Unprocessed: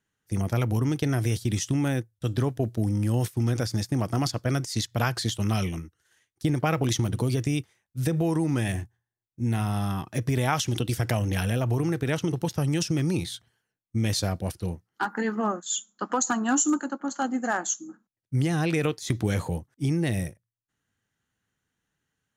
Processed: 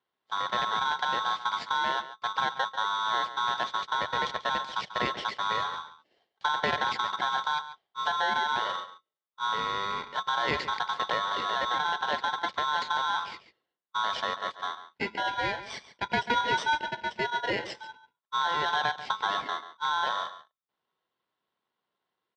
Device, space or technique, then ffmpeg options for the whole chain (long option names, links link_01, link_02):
ring modulator pedal into a guitar cabinet: -filter_complex "[0:a]asettb=1/sr,asplit=3[link_01][link_02][link_03];[link_01]atrim=end=15.934[link_04];[link_02]atrim=start=15.93:end=16.41,asetpts=PTS-STARTPTS,afade=type=in:duration=0.004:curve=qsin,afade=type=out:start_time=0.476:duration=0.004:curve=qsin,bass=frequency=250:gain=10,treble=frequency=4000:gain=-11[link_05];[link_03]atrim=start=16.406[link_06];[link_04][link_05]acrossfade=duration=0.004:curve1=hsin:curve2=qsin[link_07];[link_07][link_06]acrossfade=duration=0.004:curve1=qsin:curve2=hsin,aeval=exprs='val(0)*sgn(sin(2*PI*1200*n/s))':channel_layout=same,highpass=100,equalizer=frequency=100:width_type=q:width=4:gain=-6,equalizer=frequency=290:width_type=q:width=4:gain=-5,equalizer=frequency=1300:width_type=q:width=4:gain=-8,equalizer=frequency=2600:width_type=q:width=4:gain=-9,lowpass=frequency=3700:width=0.5412,lowpass=frequency=3700:width=1.3066,asplit=2[link_08][link_09];[link_09]adelay=139.9,volume=-13dB,highshelf=frequency=4000:gain=-3.15[link_10];[link_08][link_10]amix=inputs=2:normalize=0"